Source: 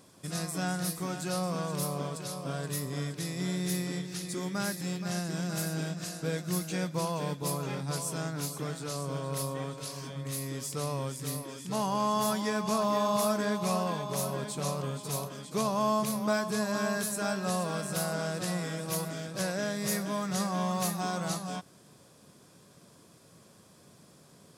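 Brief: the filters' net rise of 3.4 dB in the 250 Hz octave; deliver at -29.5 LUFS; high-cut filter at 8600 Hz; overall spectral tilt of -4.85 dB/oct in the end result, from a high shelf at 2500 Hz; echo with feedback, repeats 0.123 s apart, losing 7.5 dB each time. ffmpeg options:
-af "lowpass=8.6k,equalizer=f=250:t=o:g=5,highshelf=f=2.5k:g=3,aecho=1:1:123|246|369|492|615:0.422|0.177|0.0744|0.0312|0.0131,volume=0.5dB"

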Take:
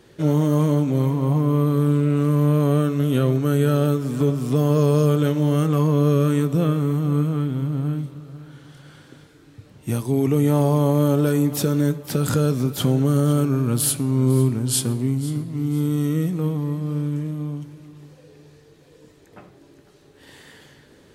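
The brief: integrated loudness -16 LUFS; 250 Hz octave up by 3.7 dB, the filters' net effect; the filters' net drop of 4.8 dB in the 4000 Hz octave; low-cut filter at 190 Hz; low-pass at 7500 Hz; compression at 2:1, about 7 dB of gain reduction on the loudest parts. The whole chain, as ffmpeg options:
-af "highpass=190,lowpass=7.5k,equalizer=f=250:t=o:g=6.5,equalizer=f=4k:t=o:g=-6,acompressor=threshold=-26dB:ratio=2,volume=9.5dB"

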